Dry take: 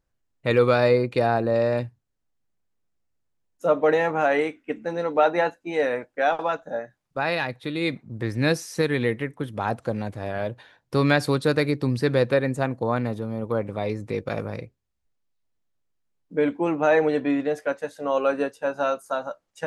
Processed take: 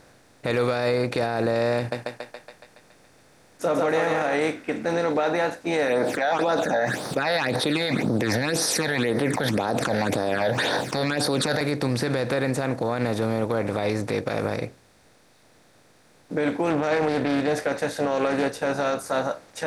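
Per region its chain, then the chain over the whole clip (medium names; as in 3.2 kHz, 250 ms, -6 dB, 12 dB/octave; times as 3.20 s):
1.78–4.34 s: band-stop 3.9 kHz, Q 19 + thinning echo 140 ms, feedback 54%, high-pass 470 Hz, level -4 dB
5.88–11.61 s: high-pass 220 Hz + phase shifter stages 8, 1.9 Hz, lowest notch 320–2500 Hz + level flattener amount 70%
16.70–19.31 s: bass shelf 170 Hz +9.5 dB + loudspeaker Doppler distortion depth 0.3 ms
whole clip: spectral levelling over time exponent 0.6; peak limiter -14 dBFS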